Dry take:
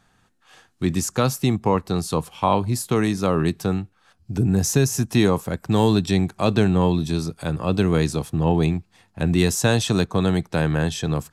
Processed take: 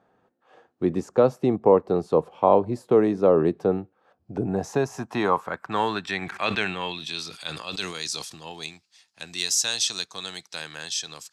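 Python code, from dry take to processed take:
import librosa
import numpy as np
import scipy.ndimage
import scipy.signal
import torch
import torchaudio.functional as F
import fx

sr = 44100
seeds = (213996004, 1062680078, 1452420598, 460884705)

y = fx.filter_sweep_bandpass(x, sr, from_hz=500.0, to_hz=5200.0, start_s=4.06, end_s=8.01, q=1.8)
y = fx.sustainer(y, sr, db_per_s=61.0, at=(6.21, 8.41), fade=0.02)
y = y * librosa.db_to_amplitude(7.0)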